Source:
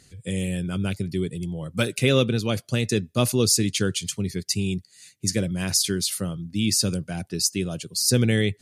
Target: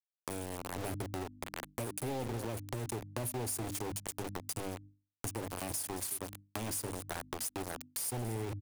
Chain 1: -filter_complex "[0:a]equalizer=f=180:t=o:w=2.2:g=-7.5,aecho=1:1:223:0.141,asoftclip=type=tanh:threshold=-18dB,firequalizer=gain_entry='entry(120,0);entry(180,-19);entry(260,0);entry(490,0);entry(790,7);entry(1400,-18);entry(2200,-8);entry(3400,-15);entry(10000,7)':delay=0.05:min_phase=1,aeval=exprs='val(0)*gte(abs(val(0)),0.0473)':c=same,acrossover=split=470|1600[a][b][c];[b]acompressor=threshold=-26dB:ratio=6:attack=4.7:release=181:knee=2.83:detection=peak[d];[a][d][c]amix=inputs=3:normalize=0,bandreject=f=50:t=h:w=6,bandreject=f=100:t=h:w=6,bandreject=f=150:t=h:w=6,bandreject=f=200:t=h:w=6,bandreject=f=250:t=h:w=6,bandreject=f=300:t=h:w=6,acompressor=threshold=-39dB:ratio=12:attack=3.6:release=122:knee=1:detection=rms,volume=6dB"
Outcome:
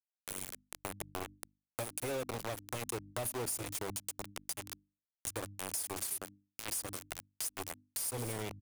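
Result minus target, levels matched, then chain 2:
250 Hz band -5.0 dB
-filter_complex "[0:a]equalizer=f=180:t=o:w=2.2:g=4.5,aecho=1:1:223:0.141,asoftclip=type=tanh:threshold=-18dB,firequalizer=gain_entry='entry(120,0);entry(180,-19);entry(260,0);entry(490,0);entry(790,7);entry(1400,-18);entry(2200,-8);entry(3400,-15);entry(10000,7)':delay=0.05:min_phase=1,aeval=exprs='val(0)*gte(abs(val(0)),0.0473)':c=same,acrossover=split=470|1600[a][b][c];[b]acompressor=threshold=-26dB:ratio=6:attack=4.7:release=181:knee=2.83:detection=peak[d];[a][d][c]amix=inputs=3:normalize=0,bandreject=f=50:t=h:w=6,bandreject=f=100:t=h:w=6,bandreject=f=150:t=h:w=6,bandreject=f=200:t=h:w=6,bandreject=f=250:t=h:w=6,bandreject=f=300:t=h:w=6,acompressor=threshold=-39dB:ratio=12:attack=3.6:release=122:knee=1:detection=rms,volume=6dB"

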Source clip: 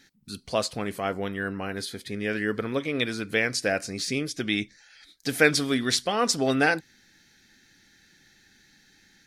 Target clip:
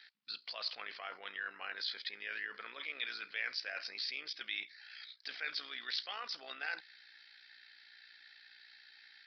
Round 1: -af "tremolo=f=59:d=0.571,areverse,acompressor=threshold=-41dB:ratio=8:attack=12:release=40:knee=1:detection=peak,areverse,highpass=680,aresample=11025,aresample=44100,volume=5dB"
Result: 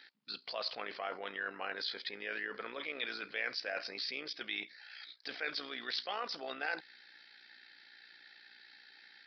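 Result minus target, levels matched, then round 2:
500 Hz band +9.5 dB
-af "tremolo=f=59:d=0.571,areverse,acompressor=threshold=-41dB:ratio=8:attack=12:release=40:knee=1:detection=peak,areverse,highpass=1.4k,aresample=11025,aresample=44100,volume=5dB"

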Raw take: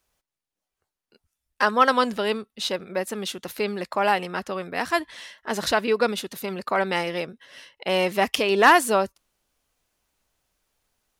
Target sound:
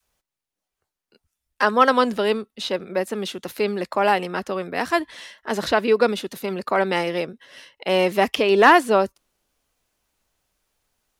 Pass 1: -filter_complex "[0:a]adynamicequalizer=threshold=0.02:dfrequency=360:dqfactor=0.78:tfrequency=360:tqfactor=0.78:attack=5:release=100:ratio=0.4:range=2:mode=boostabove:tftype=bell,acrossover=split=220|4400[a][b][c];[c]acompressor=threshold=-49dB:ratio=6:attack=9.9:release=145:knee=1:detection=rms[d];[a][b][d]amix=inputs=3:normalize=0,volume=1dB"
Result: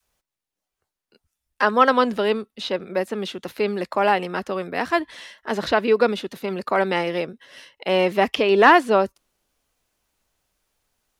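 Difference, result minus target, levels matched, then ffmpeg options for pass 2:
compressor: peak gain reduction +9 dB
-filter_complex "[0:a]adynamicequalizer=threshold=0.02:dfrequency=360:dqfactor=0.78:tfrequency=360:tqfactor=0.78:attack=5:release=100:ratio=0.4:range=2:mode=boostabove:tftype=bell,acrossover=split=220|4400[a][b][c];[c]acompressor=threshold=-38.5dB:ratio=6:attack=9.9:release=145:knee=1:detection=rms[d];[a][b][d]amix=inputs=3:normalize=0,volume=1dB"

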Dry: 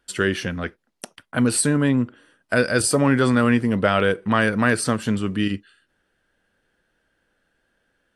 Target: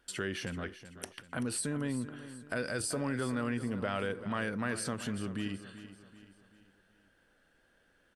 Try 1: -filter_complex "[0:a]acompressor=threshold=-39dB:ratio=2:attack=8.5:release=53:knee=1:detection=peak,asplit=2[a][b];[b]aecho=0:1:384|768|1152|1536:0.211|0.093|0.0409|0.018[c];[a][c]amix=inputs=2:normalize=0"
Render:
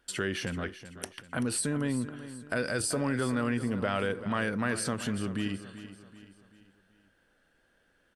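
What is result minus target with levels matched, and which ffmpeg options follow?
compressor: peak gain reduction -4 dB
-filter_complex "[0:a]acompressor=threshold=-47.5dB:ratio=2:attack=8.5:release=53:knee=1:detection=peak,asplit=2[a][b];[b]aecho=0:1:384|768|1152|1536:0.211|0.093|0.0409|0.018[c];[a][c]amix=inputs=2:normalize=0"

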